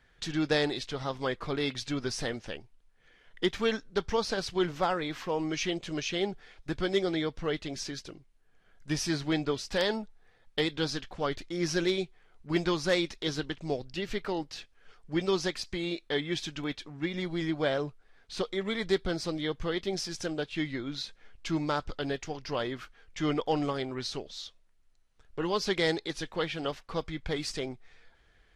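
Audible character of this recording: noise floor -64 dBFS; spectral tilt -4.5 dB/oct

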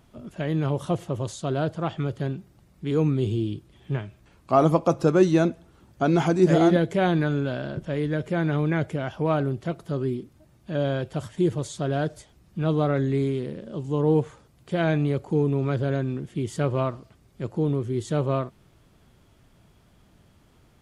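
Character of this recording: noise floor -59 dBFS; spectral tilt -6.5 dB/oct

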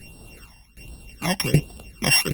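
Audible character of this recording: a buzz of ramps at a fixed pitch in blocks of 16 samples; tremolo saw down 1.3 Hz, depth 90%; phasing stages 12, 1.3 Hz, lowest notch 410–2200 Hz; Opus

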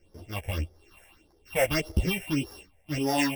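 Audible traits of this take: a buzz of ramps at a fixed pitch in blocks of 16 samples; phasing stages 6, 1.7 Hz, lowest notch 300–2600 Hz; tremolo saw down 2.2 Hz, depth 35%; a shimmering, thickened sound

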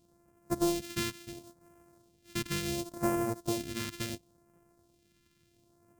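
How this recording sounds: a buzz of ramps at a fixed pitch in blocks of 128 samples; phasing stages 2, 0.71 Hz, lowest notch 670–3600 Hz

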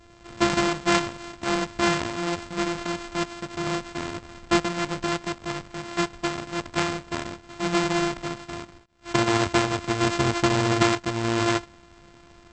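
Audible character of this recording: a buzz of ramps at a fixed pitch in blocks of 128 samples; AAC

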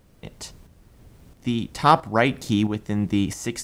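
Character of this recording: a quantiser's noise floor 12-bit, dither triangular; tremolo saw up 1.5 Hz, depth 55%

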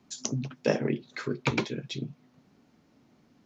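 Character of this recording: noise floor -64 dBFS; spectral tilt -5.0 dB/oct

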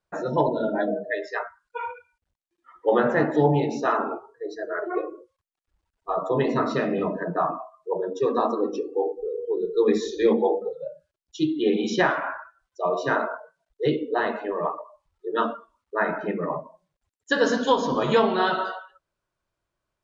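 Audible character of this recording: noise floor -85 dBFS; spectral tilt -4.5 dB/oct

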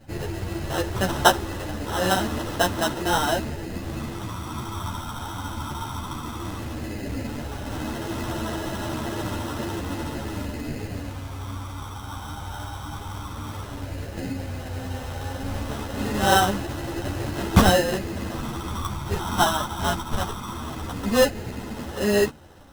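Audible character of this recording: phasing stages 8, 0.14 Hz, lowest notch 460–2800 Hz; aliases and images of a low sample rate 2300 Hz, jitter 0%; a shimmering, thickened sound

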